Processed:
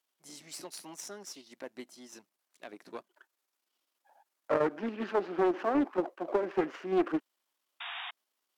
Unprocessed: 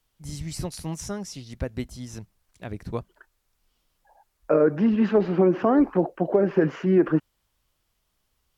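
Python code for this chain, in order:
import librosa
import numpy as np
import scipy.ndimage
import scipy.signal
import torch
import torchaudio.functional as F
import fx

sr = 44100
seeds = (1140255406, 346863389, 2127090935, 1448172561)

p1 = np.where(x < 0.0, 10.0 ** (-7.0 / 20.0) * x, x)
p2 = fx.spec_paint(p1, sr, seeds[0], shape='noise', start_s=7.8, length_s=0.31, low_hz=670.0, high_hz=3800.0, level_db=-37.0)
p3 = fx.level_steps(p2, sr, step_db=21)
p4 = p2 + (p3 * 10.0 ** (-2.5 / 20.0))
p5 = scipy.signal.sosfilt(scipy.signal.butter(4, 300.0, 'highpass', fs=sr, output='sos'), p4)
p6 = fx.peak_eq(p5, sr, hz=460.0, db=-5.5, octaves=0.31)
p7 = fx.doppler_dist(p6, sr, depth_ms=0.38)
y = p7 * 10.0 ** (-6.5 / 20.0)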